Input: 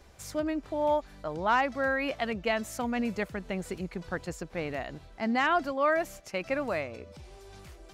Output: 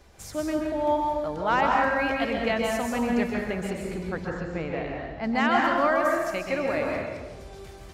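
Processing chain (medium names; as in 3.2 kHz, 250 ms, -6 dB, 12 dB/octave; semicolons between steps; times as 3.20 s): 4.10–5.24 s: distance through air 180 m; plate-style reverb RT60 1.3 s, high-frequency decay 0.65×, pre-delay 115 ms, DRR -1 dB; trim +1 dB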